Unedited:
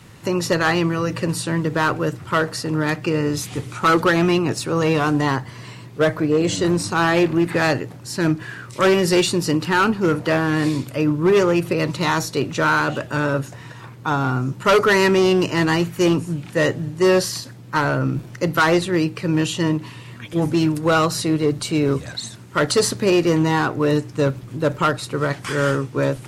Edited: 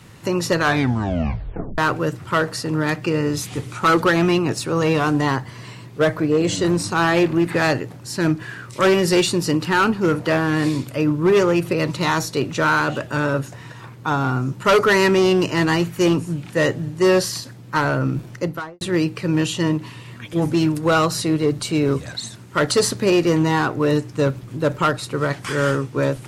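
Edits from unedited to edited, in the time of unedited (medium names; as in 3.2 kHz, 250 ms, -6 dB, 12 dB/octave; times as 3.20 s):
0.59 s: tape stop 1.19 s
18.28–18.81 s: studio fade out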